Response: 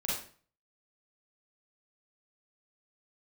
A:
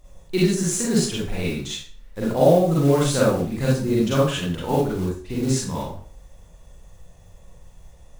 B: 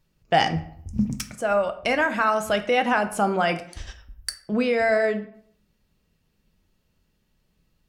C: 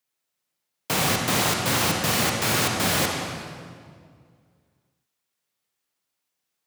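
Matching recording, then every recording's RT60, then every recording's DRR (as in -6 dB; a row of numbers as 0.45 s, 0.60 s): A; 0.45 s, 0.65 s, 2.1 s; -6.5 dB, 7.5 dB, 1.0 dB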